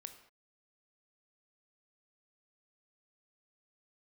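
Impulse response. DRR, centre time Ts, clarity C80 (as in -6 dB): 7.5 dB, 12 ms, 12.5 dB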